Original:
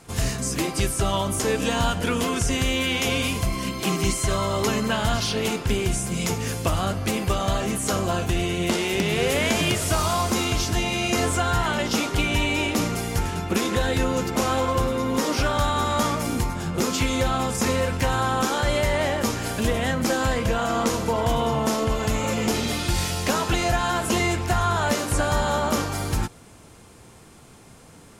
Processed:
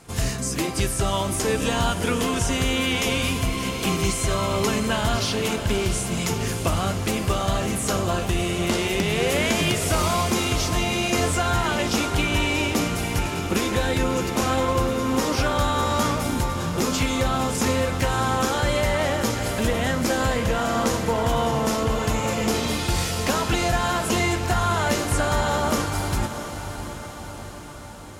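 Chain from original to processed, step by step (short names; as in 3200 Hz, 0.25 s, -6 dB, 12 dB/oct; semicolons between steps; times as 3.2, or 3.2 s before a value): diffused feedback echo 0.659 s, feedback 61%, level -10 dB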